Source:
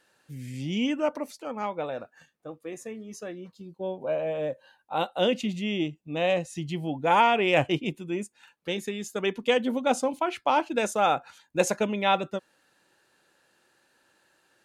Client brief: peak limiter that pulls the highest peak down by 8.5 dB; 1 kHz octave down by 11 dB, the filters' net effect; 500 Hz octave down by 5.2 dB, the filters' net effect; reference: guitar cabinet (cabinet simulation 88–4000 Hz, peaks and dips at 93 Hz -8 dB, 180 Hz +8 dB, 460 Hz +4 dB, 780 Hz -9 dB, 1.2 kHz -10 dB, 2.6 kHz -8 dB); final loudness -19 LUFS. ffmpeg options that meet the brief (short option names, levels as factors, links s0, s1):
-af "equalizer=f=500:t=o:g=-6,equalizer=f=1000:t=o:g=-3.5,alimiter=limit=0.0944:level=0:latency=1,highpass=88,equalizer=f=93:t=q:w=4:g=-8,equalizer=f=180:t=q:w=4:g=8,equalizer=f=460:t=q:w=4:g=4,equalizer=f=780:t=q:w=4:g=-9,equalizer=f=1200:t=q:w=4:g=-10,equalizer=f=2600:t=q:w=4:g=-8,lowpass=f=4000:w=0.5412,lowpass=f=4000:w=1.3066,volume=5.01"